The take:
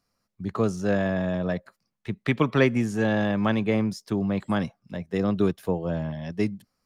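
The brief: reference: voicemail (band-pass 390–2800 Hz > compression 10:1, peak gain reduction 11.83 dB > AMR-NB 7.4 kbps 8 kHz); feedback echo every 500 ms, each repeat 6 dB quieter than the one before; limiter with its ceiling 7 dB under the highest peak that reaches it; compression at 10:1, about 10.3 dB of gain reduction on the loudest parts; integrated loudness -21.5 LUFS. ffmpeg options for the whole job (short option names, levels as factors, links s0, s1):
-af "acompressor=threshold=0.0501:ratio=10,alimiter=limit=0.0708:level=0:latency=1,highpass=390,lowpass=2800,aecho=1:1:500|1000|1500|2000|2500|3000:0.501|0.251|0.125|0.0626|0.0313|0.0157,acompressor=threshold=0.00794:ratio=10,volume=20" -ar 8000 -c:a libopencore_amrnb -b:a 7400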